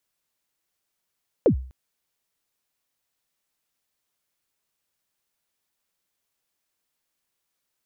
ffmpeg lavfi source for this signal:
-f lavfi -i "aevalsrc='0.299*pow(10,-3*t/0.45)*sin(2*PI*(570*0.094/log(64/570)*(exp(log(64/570)*min(t,0.094)/0.094)-1)+64*max(t-0.094,0)))':d=0.25:s=44100"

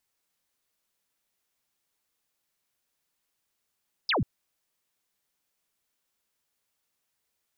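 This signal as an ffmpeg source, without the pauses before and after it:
-f lavfi -i "aevalsrc='0.075*clip(t/0.002,0,1)*clip((0.14-t)/0.002,0,1)*sin(2*PI*5400*0.14/log(88/5400)*(exp(log(88/5400)*t/0.14)-1))':d=0.14:s=44100"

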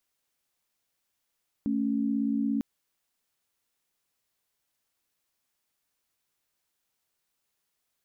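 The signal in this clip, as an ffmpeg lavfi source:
-f lavfi -i "aevalsrc='0.0422*(sin(2*PI*220*t)+sin(2*PI*277.18*t))':d=0.95:s=44100"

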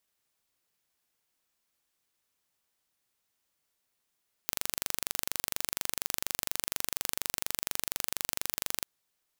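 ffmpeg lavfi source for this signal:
-f lavfi -i "aevalsrc='0.708*eq(mod(n,1822),0)':d=4.36:s=44100"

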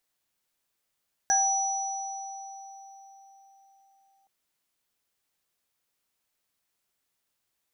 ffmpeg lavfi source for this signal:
-f lavfi -i "aevalsrc='0.0668*pow(10,-3*t/4.29)*sin(2*PI*783*t)+0.0422*pow(10,-3*t/0.29)*sin(2*PI*1630*t)+0.0891*pow(10,-3*t/2.83)*sin(2*PI*5900*t)':d=2.97:s=44100"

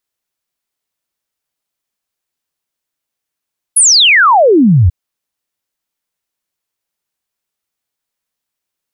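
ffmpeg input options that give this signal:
-f lavfi -i "aevalsrc='0.631*clip(min(t,1.14-t)/0.01,0,1)*sin(2*PI*11000*1.14/log(78/11000)*(exp(log(78/11000)*t/1.14)-1))':d=1.14:s=44100"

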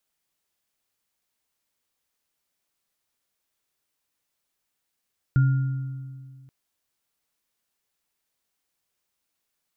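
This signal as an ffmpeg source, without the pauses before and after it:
-f lavfi -i "aevalsrc='0.2*pow(10,-3*t/2.03)*sin(2*PI*132*t)+0.0224*pow(10,-3*t/2.09)*sin(2*PI*278*t)+0.0251*pow(10,-3*t/1.19)*sin(2*PI*1410*t)':d=1.13:s=44100"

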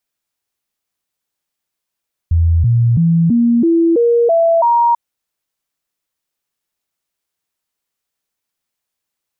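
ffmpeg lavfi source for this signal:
-f lavfi -i "aevalsrc='0.376*clip(min(mod(t,0.33),0.33-mod(t,0.33))/0.005,0,1)*sin(2*PI*83.3*pow(2,floor(t/0.33)/2)*mod(t,0.33))':d=2.64:s=44100"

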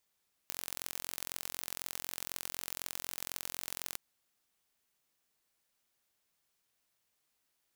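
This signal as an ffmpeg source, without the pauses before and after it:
-f lavfi -i "aevalsrc='0.316*eq(mod(n,1002),0)*(0.5+0.5*eq(mod(n,2004),0))':d=3.46:s=44100"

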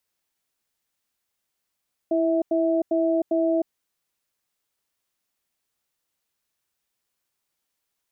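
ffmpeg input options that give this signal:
-f lavfi -i "aevalsrc='0.0841*(sin(2*PI*330*t)+sin(2*PI*652*t))*clip(min(mod(t,0.4),0.31-mod(t,0.4))/0.005,0,1)':d=1.56:s=44100"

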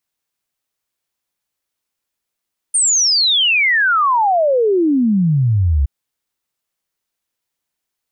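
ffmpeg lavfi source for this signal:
-f lavfi -i "aevalsrc='0.282*clip(min(t,3.12-t)/0.01,0,1)*sin(2*PI*9100*3.12/log(65/9100)*(exp(log(65/9100)*t/3.12)-1))':d=3.12:s=44100"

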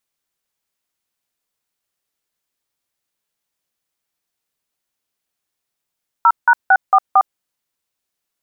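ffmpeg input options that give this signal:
-f lavfi -i "aevalsrc='0.335*clip(min(mod(t,0.226),0.057-mod(t,0.226))/0.002,0,1)*(eq(floor(t/0.226),0)*(sin(2*PI*941*mod(t,0.226))+sin(2*PI*1336*mod(t,0.226)))+eq(floor(t/0.226),1)*(sin(2*PI*941*mod(t,0.226))+sin(2*PI*1477*mod(t,0.226)))+eq(floor(t/0.226),2)*(sin(2*PI*770*mod(t,0.226))+sin(2*PI*1477*mod(t,0.226)))+eq(floor(t/0.226),3)*(sin(2*PI*770*mod(t,0.226))+sin(2*PI*1209*mod(t,0.226)))+eq(floor(t/0.226),4)*(sin(2*PI*770*mod(t,0.226))+sin(2*PI*1209*mod(t,0.226))))':d=1.13:s=44100"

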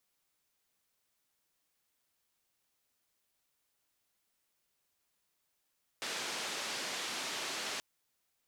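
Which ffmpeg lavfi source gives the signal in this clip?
-f lavfi -i "anoisesrc=c=white:d=1.78:r=44100:seed=1,highpass=f=230,lowpass=f=5400,volume=-28.2dB"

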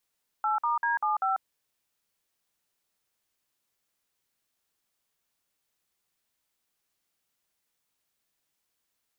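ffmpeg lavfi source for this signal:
-f lavfi -i "aevalsrc='0.0473*clip(min(mod(t,0.195),0.143-mod(t,0.195))/0.002,0,1)*(eq(floor(t/0.195),0)*(sin(2*PI*852*mod(t,0.195))+sin(2*PI*1336*mod(t,0.195)))+eq(floor(t/0.195),1)*(sin(2*PI*941*mod(t,0.195))+sin(2*PI*1209*mod(t,0.195)))+eq(floor(t/0.195),2)*(sin(2*PI*941*mod(t,0.195))+sin(2*PI*1633*mod(t,0.195)))+eq(floor(t/0.195),3)*(sin(2*PI*852*mod(t,0.195))+sin(2*PI*1209*mod(t,0.195)))+eq(floor(t/0.195),4)*(sin(2*PI*770*mod(t,0.195))+sin(2*PI*1336*mod(t,0.195))))':d=0.975:s=44100"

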